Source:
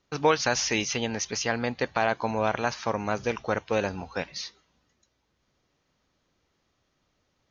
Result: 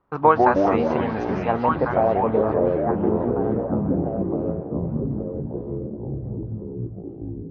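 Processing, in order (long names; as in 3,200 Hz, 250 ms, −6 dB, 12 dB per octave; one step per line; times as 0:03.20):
low-pass filter sweep 1,100 Hz → 200 Hz, 0:01.25–0:03.40
echo through a band-pass that steps 698 ms, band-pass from 3,100 Hz, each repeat −1.4 octaves, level −1.5 dB
delay with pitch and tempo change per echo 84 ms, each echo −4 semitones, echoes 3
delay with a low-pass on its return 397 ms, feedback 58%, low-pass 1,600 Hz, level −16 dB
level +2.5 dB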